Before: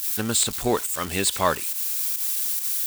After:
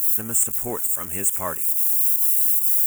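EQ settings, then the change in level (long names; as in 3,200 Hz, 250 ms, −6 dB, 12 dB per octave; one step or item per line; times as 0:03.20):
Butterworth band-reject 4,300 Hz, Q 0.85
bass and treble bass +2 dB, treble +9 dB
high-shelf EQ 8,900 Hz +7 dB
−7.5 dB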